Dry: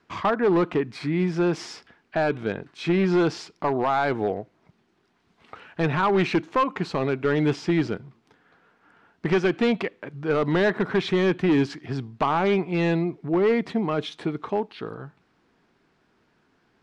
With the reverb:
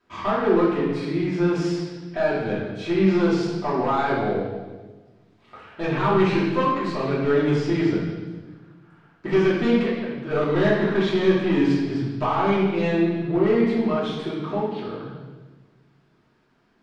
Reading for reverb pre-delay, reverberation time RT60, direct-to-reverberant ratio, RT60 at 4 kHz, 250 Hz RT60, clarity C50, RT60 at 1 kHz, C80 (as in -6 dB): 3 ms, 1.3 s, -9.5 dB, 1.2 s, 1.7 s, 0.5 dB, 1.2 s, 3.5 dB